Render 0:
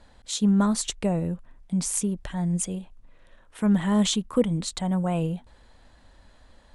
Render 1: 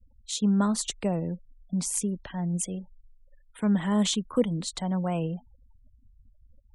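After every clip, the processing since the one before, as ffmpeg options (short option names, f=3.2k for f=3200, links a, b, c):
-filter_complex "[0:a]afftfilt=real='re*gte(hypot(re,im),0.00631)':imag='im*gte(hypot(re,im),0.00631)':win_size=1024:overlap=0.75,acrossover=split=130|420|2500[a][b][c][d];[a]acompressor=threshold=-45dB:ratio=6[e];[e][b][c][d]amix=inputs=4:normalize=0,volume=-2dB"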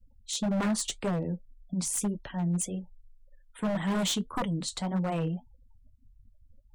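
-af "flanger=delay=6.3:depth=5.5:regen=-51:speed=1.8:shape=triangular,aeval=exprs='0.0473*(abs(mod(val(0)/0.0473+3,4)-2)-1)':c=same,volume=3.5dB"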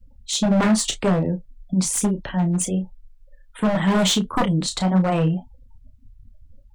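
-filter_complex "[0:a]asplit=2[a][b];[b]adynamicsmooth=sensitivity=6:basefreq=7.9k,volume=-3dB[c];[a][c]amix=inputs=2:normalize=0,asplit=2[d][e];[e]adelay=32,volume=-9dB[f];[d][f]amix=inputs=2:normalize=0,volume=5.5dB"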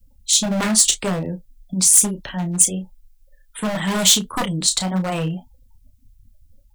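-af "crystalizer=i=5:c=0,volume=-4dB"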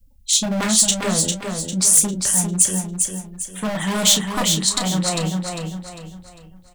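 -af "aecho=1:1:400|800|1200|1600|2000:0.562|0.214|0.0812|0.0309|0.0117,volume=-1dB"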